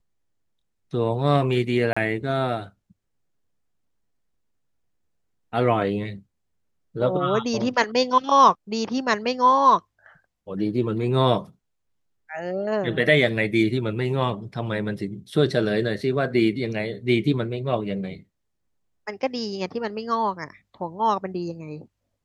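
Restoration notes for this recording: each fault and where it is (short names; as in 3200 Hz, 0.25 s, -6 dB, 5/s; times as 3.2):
1.93–1.97 gap 35 ms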